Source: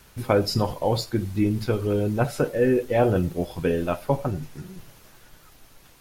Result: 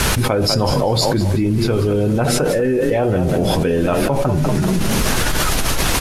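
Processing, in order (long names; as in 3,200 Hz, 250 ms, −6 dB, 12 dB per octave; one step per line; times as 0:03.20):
low-pass filter 12,000 Hz 24 dB per octave
echo with shifted repeats 195 ms, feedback 32%, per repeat +31 Hz, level −12.5 dB
envelope flattener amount 100%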